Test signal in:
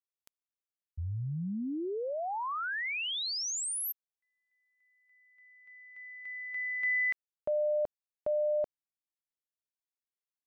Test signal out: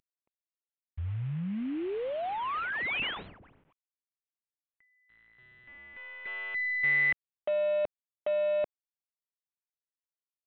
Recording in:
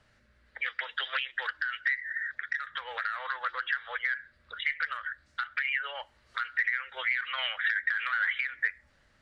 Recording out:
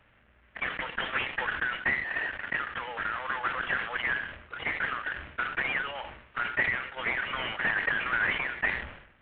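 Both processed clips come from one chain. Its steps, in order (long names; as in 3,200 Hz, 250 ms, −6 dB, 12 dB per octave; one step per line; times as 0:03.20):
variable-slope delta modulation 16 kbit/s
level that may fall only so fast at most 76 dB per second
level +2 dB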